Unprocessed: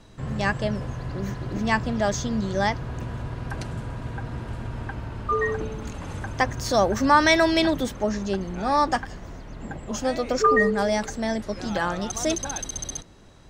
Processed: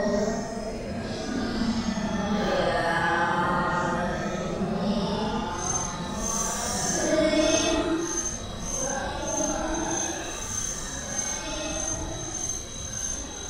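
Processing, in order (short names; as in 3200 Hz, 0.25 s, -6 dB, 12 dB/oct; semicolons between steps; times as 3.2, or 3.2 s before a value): split-band echo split 1200 Hz, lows 0.235 s, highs 0.431 s, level -9 dB; soft clip -6.5 dBFS, distortion -24 dB; Paulstretch 9.3×, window 0.05 s, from 11.49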